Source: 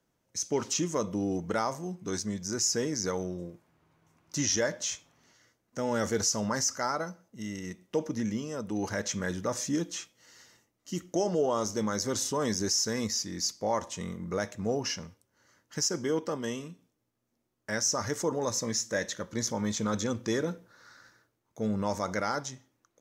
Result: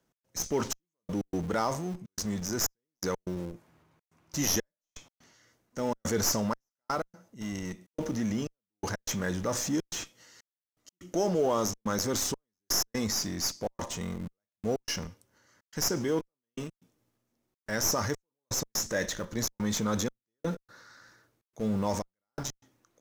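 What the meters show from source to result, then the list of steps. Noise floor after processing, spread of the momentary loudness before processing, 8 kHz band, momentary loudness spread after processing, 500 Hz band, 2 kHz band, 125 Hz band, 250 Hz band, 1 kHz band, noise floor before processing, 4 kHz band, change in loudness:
below −85 dBFS, 11 LU, −1.5 dB, 12 LU, −2.0 dB, −1.5 dB, +0.5 dB, −0.5 dB, −1.5 dB, −79 dBFS, −1.0 dB, −1.0 dB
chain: stylus tracing distortion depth 0.039 ms
transient designer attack −2 dB, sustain +5 dB
gate pattern "x.xxxx...x.xxxxx" 124 BPM −60 dB
in parallel at −11 dB: comparator with hysteresis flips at −35.5 dBFS

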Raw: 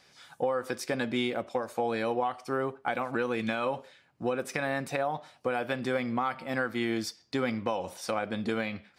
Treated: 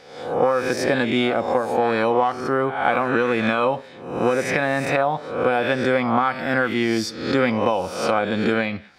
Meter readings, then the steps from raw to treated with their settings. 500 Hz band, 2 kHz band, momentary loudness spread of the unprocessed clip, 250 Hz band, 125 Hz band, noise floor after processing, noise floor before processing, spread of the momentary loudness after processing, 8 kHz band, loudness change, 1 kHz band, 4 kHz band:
+11.0 dB, +11.0 dB, 4 LU, +10.0 dB, +10.0 dB, −41 dBFS, −64 dBFS, 4 LU, +7.5 dB, +10.5 dB, +11.0 dB, +9.5 dB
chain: peak hold with a rise ahead of every peak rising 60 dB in 0.72 s
low-pass filter 3,900 Hz 6 dB per octave
level +9 dB

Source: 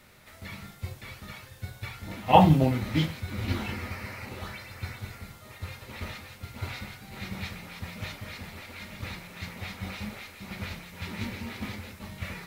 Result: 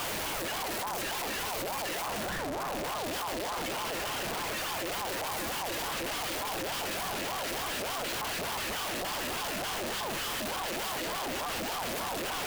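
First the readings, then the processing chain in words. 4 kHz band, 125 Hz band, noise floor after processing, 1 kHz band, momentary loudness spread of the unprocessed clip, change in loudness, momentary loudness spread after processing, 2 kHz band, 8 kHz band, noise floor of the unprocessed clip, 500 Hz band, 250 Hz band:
+6.5 dB, −16.0 dB, −34 dBFS, −2.5 dB, 16 LU, −2.0 dB, 1 LU, +4.0 dB, +14.0 dB, −51 dBFS, −1.0 dB, −9.0 dB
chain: sign of each sample alone
ring modulator whose carrier an LFO sweeps 690 Hz, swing 40%, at 3.4 Hz

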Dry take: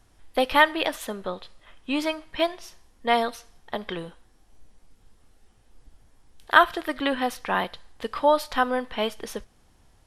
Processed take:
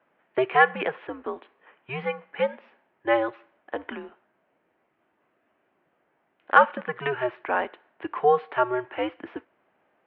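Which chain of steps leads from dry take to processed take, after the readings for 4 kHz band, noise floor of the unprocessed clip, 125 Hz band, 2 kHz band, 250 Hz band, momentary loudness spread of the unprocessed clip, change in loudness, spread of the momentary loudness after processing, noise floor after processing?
−11.0 dB, −60 dBFS, +2.5 dB, −1.0 dB, −4.5 dB, 18 LU, −0.5 dB, 18 LU, −72 dBFS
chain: single-sideband voice off tune −130 Hz 400–2,600 Hz
harmonic generator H 5 −43 dB, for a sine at −1 dBFS

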